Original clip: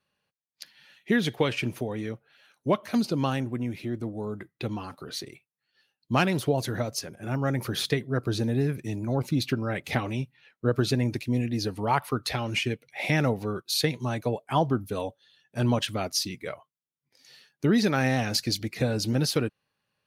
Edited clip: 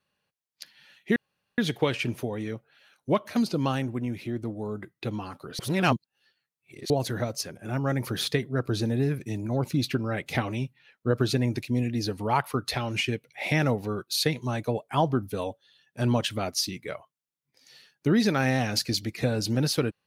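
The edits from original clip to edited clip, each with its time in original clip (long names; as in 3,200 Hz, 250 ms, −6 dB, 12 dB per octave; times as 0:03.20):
0:01.16: splice in room tone 0.42 s
0:05.17–0:06.48: reverse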